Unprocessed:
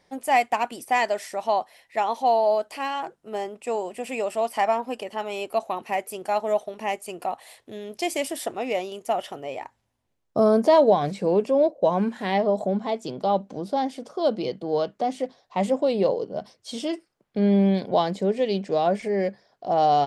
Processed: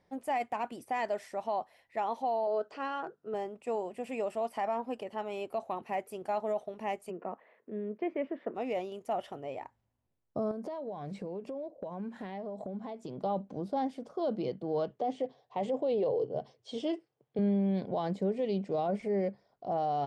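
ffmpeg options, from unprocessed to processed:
-filter_complex "[0:a]asettb=1/sr,asplit=3[a][b][c];[a]atrim=end=2.474[d];[b]atrim=start=2.47:end=3.34,asetpts=PTS-STARTPTS,afade=t=in:d=0.004:c=qsin,afade=t=out:st=0.866:d=0.004:c=qsin,highpass=120,equalizer=f=430:t=q:w=4:g=9,equalizer=f=860:t=q:w=4:g=-3,equalizer=f=1.4k:t=q:w=4:g=9,equalizer=f=2.2k:t=q:w=4:g=-6,lowpass=f=6.6k:w=0.5412,lowpass=f=6.6k:w=1.3066[e];[c]atrim=start=3.336[f];[d][e]acrossfade=d=0.004:c1=hsin:c2=qsin[g];[g][f]acrossfade=d=0.004:c1=qsin:c2=hsin,asplit=3[h][i][j];[h]afade=t=out:st=7.09:d=0.02[k];[i]highpass=f=180:w=0.5412,highpass=f=180:w=1.3066,equalizer=f=200:t=q:w=4:g=8,equalizer=f=440:t=q:w=4:g=6,equalizer=f=780:t=q:w=4:g=-9,lowpass=f=2.1k:w=0.5412,lowpass=f=2.1k:w=1.3066,afade=t=in:st=7.09:d=0.02,afade=t=out:st=8.54:d=0.02[l];[j]afade=t=in:st=8.54:d=0.02[m];[k][l][m]amix=inputs=3:normalize=0,asettb=1/sr,asplit=3[n][o][p];[n]atrim=end=10.514[q];[o]atrim=start=10.51:end=13.19,asetpts=PTS-STARTPTS,afade=t=in:d=0.004:c=qsin,afade=t=out:st=2.676:d=0.004:c=qsin,acompressor=threshold=-30dB:ratio=8:attack=3.2:release=140:knee=1:detection=peak[r];[p]atrim=start=13.186[s];[q][r]acrossfade=d=0.004:c1=hsin:c2=qsin[t];[t][s]acrossfade=d=0.004:c1=qsin:c2=hsin,asettb=1/sr,asplit=3[u][v][w];[u]atrim=end=14.904[x];[v]atrim=start=14.9:end=17.39,asetpts=PTS-STARTPTS,afade=t=in:d=0.004:c=qsin,afade=t=out:st=2.486:d=0.004:c=qsin,highpass=110,equalizer=f=130:t=q:w=4:g=10,equalizer=f=190:t=q:w=4:g=-9,equalizer=f=450:t=q:w=4:g=8,equalizer=f=760:t=q:w=4:g=4,equalizer=f=1.4k:t=q:w=4:g=-4,equalizer=f=3.2k:t=q:w=4:g=6,lowpass=f=7.8k:w=0.5412,lowpass=f=7.8k:w=1.3066[y];[w]atrim=start=17.386[z];[x][y]acrossfade=d=0.004:c1=hsin:c2=qsin[aa];[aa][z]acrossfade=d=0.004:c1=qsin:c2=hsin,asettb=1/sr,asplit=3[ab][ac][ad];[ab]atrim=end=18.324[ae];[ac]atrim=start=18.32:end=19.67,asetpts=PTS-STARTPTS,afade=t=in:d=0.004:c=qsin,afade=t=out:st=1.346:d=0.004:c=qsin,bandreject=f=1.7k:w=7.1[af];[ad]atrim=start=19.666[ag];[ae][af]acrossfade=d=0.004:c1=hsin:c2=qsin[ah];[ah][ag]acrossfade=d=0.004:c1=qsin:c2=hsin,highshelf=f=2.6k:g=-10.5,alimiter=limit=-18dB:level=0:latency=1:release=16,equalizer=f=97:t=o:w=2.2:g=4.5,volume=-6.5dB"

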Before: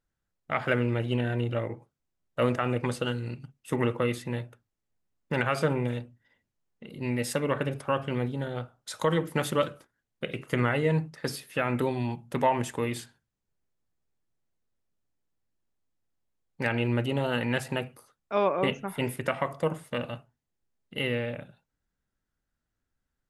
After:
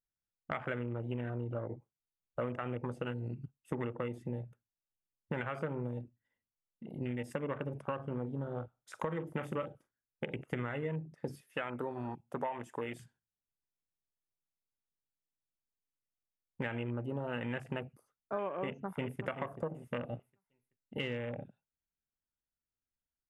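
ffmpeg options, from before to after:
-filter_complex "[0:a]asettb=1/sr,asplit=3[a][b][c];[a]atrim=end=7.954[d];[b]atrim=start=7.95:end=10.35,asetpts=PTS-STARTPTS,afade=t=in:d=0.004:c=qsin,afade=t=out:st=2.396:d=0.004:c=qsin,asplit=2[e][f];[f]adelay=44,volume=-13dB[g];[e][g]amix=inputs=2:normalize=0,atrim=end_sample=105840[h];[c]atrim=start=10.346[i];[d][h]acrossfade=d=0.004:c1=hsin:c2=qsin[j];[j][i]acrossfade=d=0.004:c1=qsin:c2=hsin,asettb=1/sr,asplit=3[k][l][m];[k]atrim=end=11.414[n];[l]atrim=start=11.41:end=13,asetpts=PTS-STARTPTS,afade=t=in:d=0.004:c=qsin,afade=t=out:st=1.586:d=0.004:c=qsin,lowshelf=f=290:g=-12[o];[m]atrim=start=12.996[p];[n][o]acrossfade=d=0.004:c1=hsin:c2=qsin[q];[q][p]acrossfade=d=0.004:c1=qsin:c2=hsin,asplit=2[r][s];[s]afade=t=in:st=18.65:d=0.01,afade=t=out:st=19.24:d=0.01,aecho=0:1:380|760|1140|1520:0.316228|0.126491|0.0505964|0.0202386[t];[r][t]amix=inputs=2:normalize=0,afwtdn=0.0158,equalizer=f=4.1k:t=o:w=0.34:g=-8.5,acompressor=threshold=-34dB:ratio=6"

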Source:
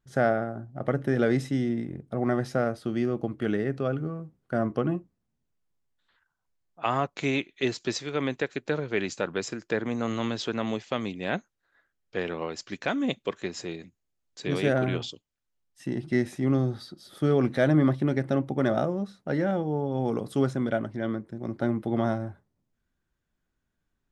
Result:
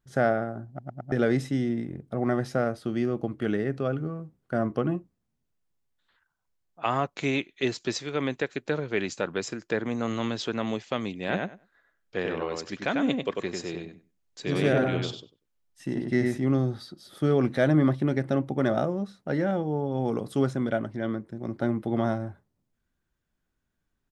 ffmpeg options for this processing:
-filter_complex "[0:a]asplit=3[a][b][c];[a]afade=t=out:st=11.27:d=0.02[d];[b]asplit=2[e][f];[f]adelay=96,lowpass=f=3.1k:p=1,volume=-3dB,asplit=2[g][h];[h]adelay=96,lowpass=f=3.1k:p=1,volume=0.16,asplit=2[i][j];[j]adelay=96,lowpass=f=3.1k:p=1,volume=0.16[k];[e][g][i][k]amix=inputs=4:normalize=0,afade=t=in:st=11.27:d=0.02,afade=t=out:st=16.37:d=0.02[l];[c]afade=t=in:st=16.37:d=0.02[m];[d][l][m]amix=inputs=3:normalize=0,asplit=5[n][o][p][q][r];[n]atrim=end=0.792[s];[o]atrim=start=0.678:end=0.792[t];[p]atrim=start=0.678:end=0.792[u];[q]atrim=start=0.678:end=0.792[v];[r]atrim=start=1.118[w];[s][t]acrossfade=d=0.004:c1=hsin:c2=hsin[x];[x][u]acrossfade=d=0.004:c1=hsin:c2=hsin[y];[y][v]acrossfade=d=0.004:c1=hsin:c2=hsin[z];[z][w]acrossfade=d=0.004:c1=hsin:c2=hsin"

